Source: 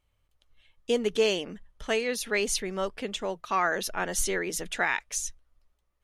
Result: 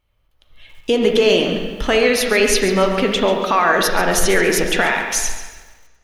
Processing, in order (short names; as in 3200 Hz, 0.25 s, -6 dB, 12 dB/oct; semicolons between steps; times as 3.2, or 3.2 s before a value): bell 7800 Hz -8.5 dB 0.69 oct; in parallel at +0.5 dB: compressor, threshold -39 dBFS, peak gain reduction 18 dB; on the sum: limiter -19.5 dBFS, peak gain reduction 7.5 dB; AGC gain up to 15 dB; on a send at -3 dB: reverb RT60 1.4 s, pre-delay 4 ms; on the sum: lo-fi delay 0.139 s, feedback 35%, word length 7-bit, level -12 dB; gain -2 dB